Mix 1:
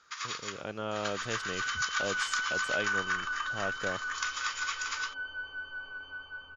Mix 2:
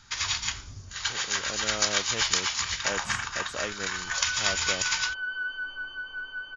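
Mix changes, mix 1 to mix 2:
speech: entry +0.85 s
first sound: remove four-pole ladder high-pass 1,100 Hz, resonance 70%
second sound: entry +2.50 s

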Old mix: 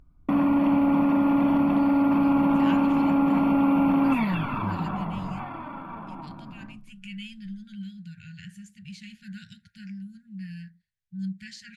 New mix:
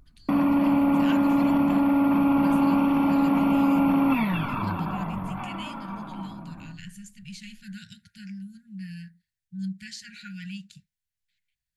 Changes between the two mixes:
speech: entry −1.60 s
master: add high-shelf EQ 5,900 Hz +11 dB

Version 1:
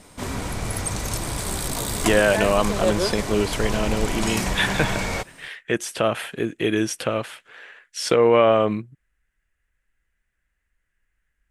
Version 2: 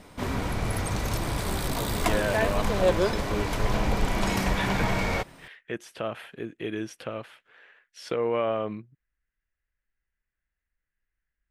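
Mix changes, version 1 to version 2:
speech −10.5 dB
master: add parametric band 8,400 Hz −10.5 dB 1.3 octaves

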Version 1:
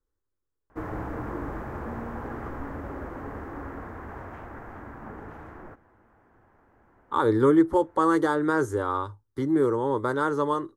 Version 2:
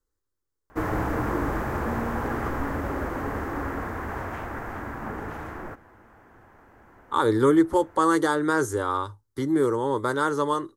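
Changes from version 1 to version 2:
background +6.5 dB
master: add high-shelf EQ 2,700 Hz +10.5 dB

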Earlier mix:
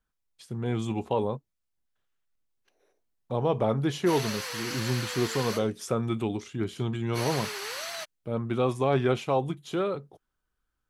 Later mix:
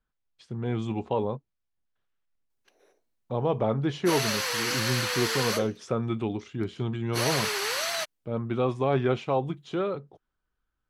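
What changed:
speech: add high-frequency loss of the air 110 metres
background +6.5 dB

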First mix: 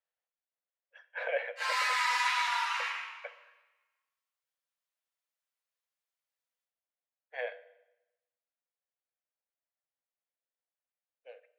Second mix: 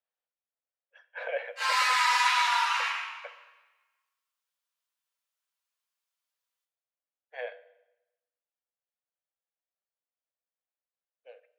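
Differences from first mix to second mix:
background +6.0 dB
master: add parametric band 2,000 Hz −3.5 dB 0.4 octaves

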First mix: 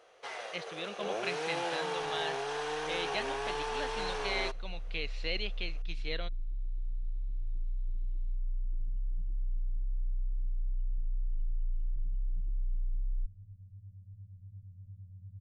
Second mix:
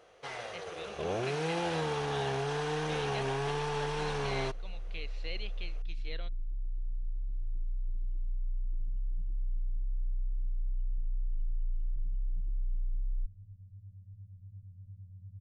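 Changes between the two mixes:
speech −7.0 dB
first sound: remove high-pass filter 410 Hz 12 dB per octave

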